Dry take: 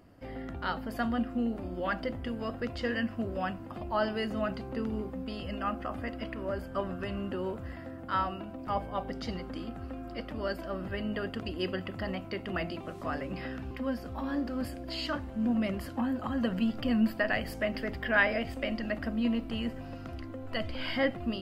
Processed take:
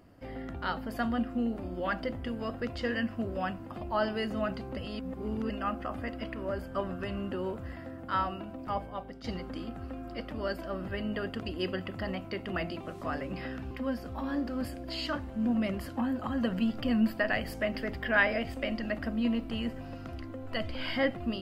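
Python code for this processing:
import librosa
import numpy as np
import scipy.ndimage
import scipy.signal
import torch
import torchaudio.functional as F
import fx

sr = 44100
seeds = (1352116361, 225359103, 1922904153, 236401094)

y = fx.edit(x, sr, fx.reverse_span(start_s=4.77, length_s=0.73),
    fx.fade_out_to(start_s=8.6, length_s=0.64, floor_db=-11.0), tone=tone)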